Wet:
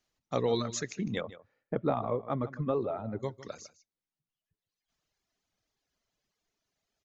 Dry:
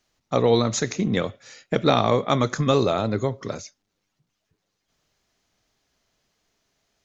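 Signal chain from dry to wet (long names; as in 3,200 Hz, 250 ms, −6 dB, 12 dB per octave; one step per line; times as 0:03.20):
0:01.21–0:03.23: low-pass filter 1,200 Hz 12 dB per octave
reverb reduction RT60 1.6 s
on a send: single-tap delay 154 ms −16 dB
on the sum: level −9 dB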